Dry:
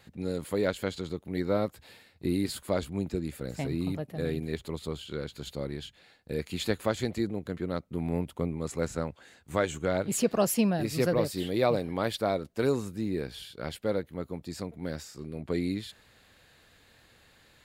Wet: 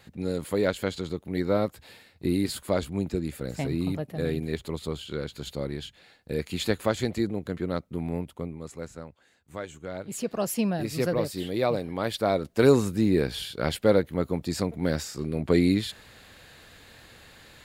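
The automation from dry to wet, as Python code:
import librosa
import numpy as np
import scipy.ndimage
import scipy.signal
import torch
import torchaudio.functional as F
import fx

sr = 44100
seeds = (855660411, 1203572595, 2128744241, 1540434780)

y = fx.gain(x, sr, db=fx.line((7.77, 3.0), (9.01, -9.0), (9.82, -9.0), (10.72, 0.0), (11.98, 0.0), (12.73, 9.0)))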